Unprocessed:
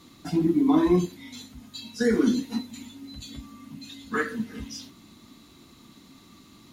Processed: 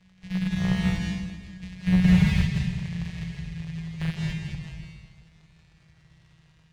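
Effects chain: sample sorter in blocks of 256 samples; Doppler pass-by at 2.78, 26 m/s, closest 20 m; Chebyshev band-stop 200–1700 Hz, order 5; in parallel at -8 dB: sample-and-hold 23×; on the sum: crackle 150/s -53 dBFS; air absorption 110 m; reverb RT60 1.2 s, pre-delay 0.153 s, DRR 1 dB; slew limiter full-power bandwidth 38 Hz; gain +6 dB

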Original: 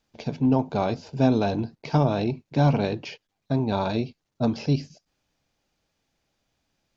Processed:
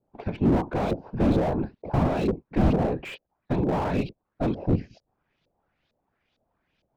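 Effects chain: whisperiser; LFO low-pass saw up 2.2 Hz 500–4000 Hz; slew limiter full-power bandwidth 39 Hz

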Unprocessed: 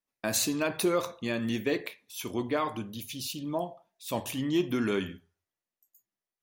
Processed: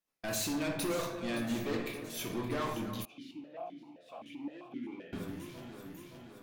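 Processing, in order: tube stage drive 34 dB, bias 0.25; echo with dull and thin repeats by turns 0.285 s, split 1900 Hz, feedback 79%, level -10.5 dB; shoebox room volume 180 m³, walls mixed, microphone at 0.73 m; 3.05–5.13 vowel sequencer 7.7 Hz

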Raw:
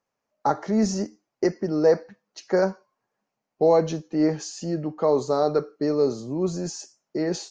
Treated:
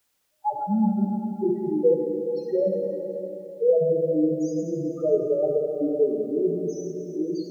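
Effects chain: loudest bins only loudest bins 2; plate-style reverb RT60 4 s, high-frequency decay 0.5×, DRR 0.5 dB; requantised 12-bit, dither triangular

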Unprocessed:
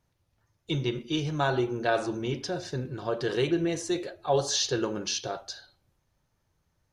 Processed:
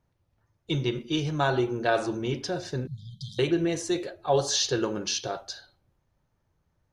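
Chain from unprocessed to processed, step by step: 2.87–3.39 brick-wall FIR band-stop 200–3100 Hz; mismatched tape noise reduction decoder only; gain +1.5 dB

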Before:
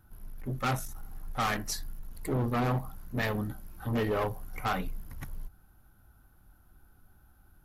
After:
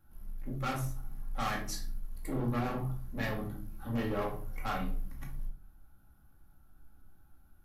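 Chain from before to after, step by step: shoebox room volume 440 m³, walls furnished, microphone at 2.3 m; gain -8 dB

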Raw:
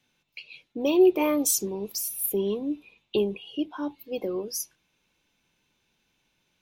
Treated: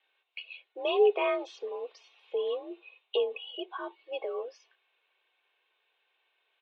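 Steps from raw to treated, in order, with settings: comb 2.8 ms, depth 38%; mistuned SSB +51 Hz 450–3400 Hz

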